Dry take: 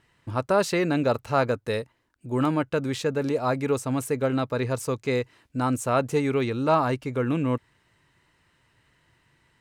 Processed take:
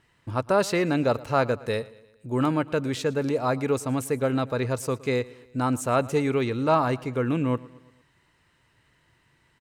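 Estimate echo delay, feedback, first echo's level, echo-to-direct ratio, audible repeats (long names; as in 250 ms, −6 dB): 115 ms, 53%, −21.0 dB, −19.5 dB, 3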